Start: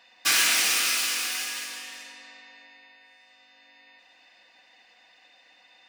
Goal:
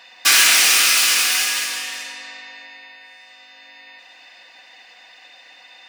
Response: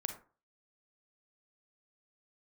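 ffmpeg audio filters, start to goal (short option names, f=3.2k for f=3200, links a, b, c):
-filter_complex "[0:a]lowshelf=f=380:g=-8,asplit=2[a][b];[b]alimiter=limit=-19dB:level=0:latency=1,volume=2dB[c];[a][c]amix=inputs=2:normalize=0,volume=5dB"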